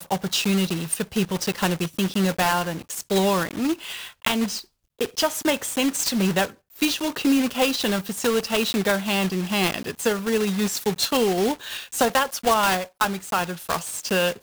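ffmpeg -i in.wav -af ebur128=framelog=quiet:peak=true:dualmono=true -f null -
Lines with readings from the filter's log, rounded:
Integrated loudness:
  I:         -20.3 LUFS
  Threshold: -30.4 LUFS
Loudness range:
  LRA:         1.8 LU
  Threshold: -40.3 LUFS
  LRA low:   -21.4 LUFS
  LRA high:  -19.5 LUFS
True peak:
  Peak:       -6.0 dBFS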